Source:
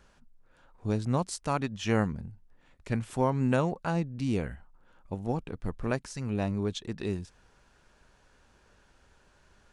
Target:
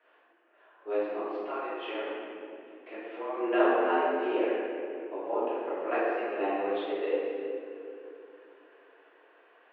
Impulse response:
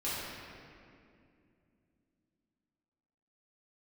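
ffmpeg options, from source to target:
-filter_complex "[0:a]asettb=1/sr,asplit=3[a][b][c];[a]atrim=end=1.064[d];[b]atrim=start=1.06:end=3.33,asetpts=PTS-STARTPTS,afade=t=in:d=0.004:c=qsin,afade=t=out:st=2.266:d=0.004:c=qsin,acompressor=threshold=-34dB:ratio=5[e];[c]atrim=start=3.326[f];[d][e]acrossfade=d=0.004:c1=hsin:c2=qsin[g];[g][f]acrossfade=d=0.004:c1=qsin:c2=hsin[h];[1:a]atrim=start_sample=2205,asetrate=48510,aresample=44100[i];[h][i]afir=irnorm=-1:irlink=0,highpass=f=280:t=q:w=0.5412,highpass=f=280:t=q:w=1.307,lowpass=f=2.9k:t=q:w=0.5176,lowpass=f=2.9k:t=q:w=0.7071,lowpass=f=2.9k:t=q:w=1.932,afreqshift=95"

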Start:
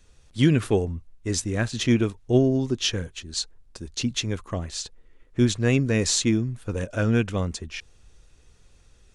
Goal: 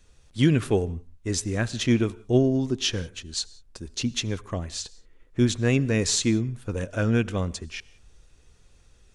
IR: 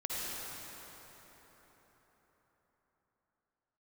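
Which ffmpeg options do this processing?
-filter_complex "[0:a]asplit=2[a][b];[1:a]atrim=start_sample=2205,atrim=end_sample=6615,asetrate=34398,aresample=44100[c];[b][c]afir=irnorm=-1:irlink=0,volume=-21.5dB[d];[a][d]amix=inputs=2:normalize=0,volume=-1.5dB"

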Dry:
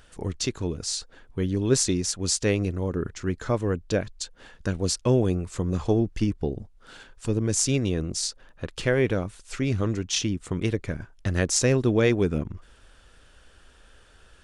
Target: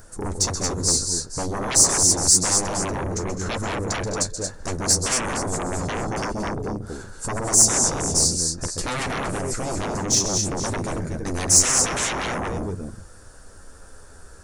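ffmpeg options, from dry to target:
-filter_complex "[0:a]asplit=2[a][b];[b]aecho=0:1:130|205|228|466:0.282|0.188|0.501|0.2[c];[a][c]amix=inputs=2:normalize=0,flanger=delay=9.2:depth=3.7:regen=-25:speed=0.31:shape=triangular,asplit=2[d][e];[e]adelay=160,highpass=300,lowpass=3.4k,asoftclip=type=hard:threshold=-19.5dB,volume=-24dB[f];[d][f]amix=inputs=2:normalize=0,acrossover=split=1700[g][h];[g]aeval=exprs='0.266*sin(PI/2*10*val(0)/0.266)':c=same[i];[h]aexciter=amount=13.6:drive=8.5:freq=4.4k[j];[i][j]amix=inputs=2:normalize=0,asettb=1/sr,asplit=3[k][l][m];[k]atrim=end=7.694[n];[l]atrim=start=7.69:end=8.15,asetpts=PTS-STARTPTS,afade=t=in:d=0.004:c=qsin,afade=t=out:st=0.456:d=0.004:c=qsin,acrossover=split=9600[o][p];[p]acompressor=threshold=-28dB:ratio=4:attack=1:release=60[q];[o][q]amix=inputs=2:normalize=0[r];[m]atrim=start=8.146[s];[n][r]acrossfade=d=0.004:c1=hsin:c2=qsin[t];[t][s]acrossfade=d=0.004:c1=qsin:c2=hsin,volume=-12dB"

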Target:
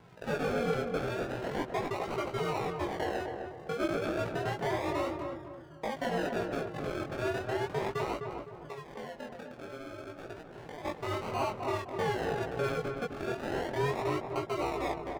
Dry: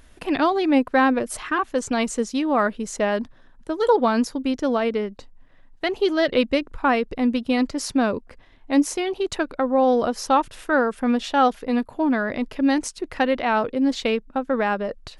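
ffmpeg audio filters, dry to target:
-filter_complex "[0:a]acrossover=split=150|3000[a][b][c];[b]acompressor=threshold=-28dB:ratio=2[d];[a][d][c]amix=inputs=3:normalize=0,alimiter=limit=-20dB:level=0:latency=1:release=115,asettb=1/sr,asplit=3[e][f][g];[e]atrim=end=8.164[h];[f]atrim=start=8.16:end=10.85,asetpts=PTS-STARTPTS,afade=t=in:d=0.004:c=qsin,afade=t=out:st=2.686:d=0.004:c=qsin,acompressor=threshold=-39dB:ratio=6[i];[g]atrim=start=10.846[j];[h][i]acrossfade=d=0.004:c1=hsin:c2=qsin[k];[k][j]acrossfade=d=0.004:c1=qsin:c2=hsin,aeval=exprs='val(0)*sin(2*PI*140*n/s)':c=same,acrusher=samples=36:mix=1:aa=0.000001:lfo=1:lforange=21.6:lforate=0.33,flanger=delay=17:depth=6.9:speed=0.48,asplit=2[l][m];[m]highpass=f=720:p=1,volume=14dB,asoftclip=type=tanh:threshold=-18dB[n];[l][n]amix=inputs=2:normalize=0,lowpass=f=1.6k:p=1,volume=-6dB,asplit=2[o][p];[p]adelay=255,lowpass=f=1.3k:p=1,volume=-4dB,asplit=2[q][r];[r]adelay=255,lowpass=f=1.3k:p=1,volume=0.42,asplit=2[s][t];[t]adelay=255,lowpass=f=1.3k:p=1,volume=0.42,asplit=2[u][v];[v]adelay=255,lowpass=f=1.3k:p=1,volume=0.42,asplit=2[w][x];[x]adelay=255,lowpass=f=1.3k:p=1,volume=0.42[y];[o][q][s][u][w][y]amix=inputs=6:normalize=0"

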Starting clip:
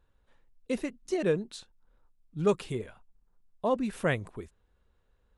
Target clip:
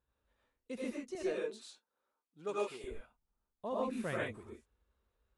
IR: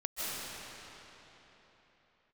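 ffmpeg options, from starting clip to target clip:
-filter_complex "[0:a]asetnsamples=n=441:p=0,asendcmd='1.15 highpass f 360;2.84 highpass f 45',highpass=60[a];[1:a]atrim=start_sample=2205,afade=t=out:st=0.35:d=0.01,atrim=end_sample=15876,asetrate=83790,aresample=44100[b];[a][b]afir=irnorm=-1:irlink=0,volume=-4dB"

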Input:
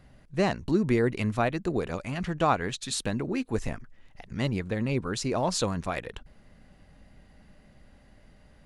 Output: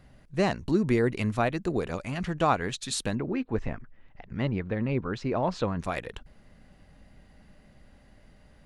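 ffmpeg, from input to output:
-filter_complex "[0:a]asettb=1/sr,asplit=3[a][b][c];[a]atrim=end=3.154[d];[b]atrim=start=3.15:end=5.8,asetpts=PTS-STARTPTS,afade=t=in:d=0.004:c=qsin,afade=t=out:st=2.646:d=0.004:c=qsin,lowpass=2.5k[e];[c]atrim=start=5.796[f];[d][e]acrossfade=d=0.004:c1=hsin:c2=qsin[g];[g][f]acrossfade=d=0.004:c1=qsin:c2=hsin"

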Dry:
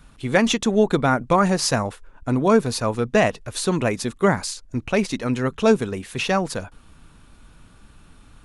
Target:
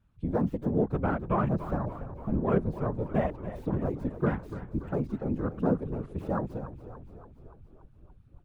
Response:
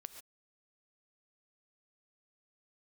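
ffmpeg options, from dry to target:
-filter_complex "[0:a]acrossover=split=1700[a][b];[b]aeval=exprs='(mod(20*val(0)+1,2)-1)/20':c=same[c];[a][c]amix=inputs=2:normalize=0,afwtdn=0.0501,afftfilt=real='hypot(re,im)*cos(2*PI*random(0))':imag='hypot(re,im)*sin(2*PI*random(1))':win_size=512:overlap=0.75,asplit=2[d][e];[e]acompressor=threshold=-32dB:ratio=20,volume=-2dB[f];[d][f]amix=inputs=2:normalize=0,bass=f=250:g=6,treble=f=4k:g=-11,asplit=9[g][h][i][j][k][l][m][n][o];[h]adelay=287,afreqshift=-36,volume=-12.5dB[p];[i]adelay=574,afreqshift=-72,volume=-16.4dB[q];[j]adelay=861,afreqshift=-108,volume=-20.3dB[r];[k]adelay=1148,afreqshift=-144,volume=-24.1dB[s];[l]adelay=1435,afreqshift=-180,volume=-28dB[t];[m]adelay=1722,afreqshift=-216,volume=-31.9dB[u];[n]adelay=2009,afreqshift=-252,volume=-35.8dB[v];[o]adelay=2296,afreqshift=-288,volume=-39.6dB[w];[g][p][q][r][s][t][u][v][w]amix=inputs=9:normalize=0,volume=-7dB"

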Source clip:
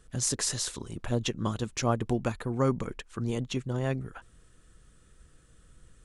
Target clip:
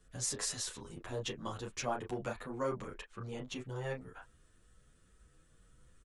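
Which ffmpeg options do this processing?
-filter_complex "[0:a]asettb=1/sr,asplit=3[a][b][c];[a]atrim=end=3.054[d];[b]atrim=start=3.05:end=3.46,asetpts=PTS-STARTPTS,afade=t=in:d=0.004:c=qsin,afade=t=out:st=0.406:d=0.004:c=qsin,highshelf=f=5.8k:g=-10.5[e];[c]atrim=start=3.456[f];[d][e]acrossfade=d=0.004:c1=hsin:c2=qsin[g];[g][f]acrossfade=d=0.004:c1=qsin:c2=hsin,acrossover=split=340|3000[h][i][j];[h]asoftclip=type=tanh:threshold=-36dB[k];[i]asplit=2[l][m];[m]adelay=32,volume=-3dB[n];[l][n]amix=inputs=2:normalize=0[o];[k][o][j]amix=inputs=3:normalize=0,asplit=2[p][q];[q]adelay=9.2,afreqshift=2[r];[p][r]amix=inputs=2:normalize=1,volume=-4dB"

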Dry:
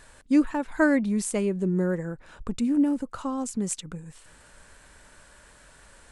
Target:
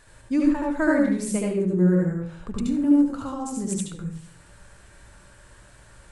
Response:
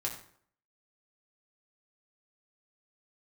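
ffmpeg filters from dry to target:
-filter_complex "[0:a]asplit=2[a][b];[1:a]atrim=start_sample=2205,lowshelf=f=270:g=9.5,adelay=73[c];[b][c]afir=irnorm=-1:irlink=0,volume=-1.5dB[d];[a][d]amix=inputs=2:normalize=0,volume=-3.5dB"

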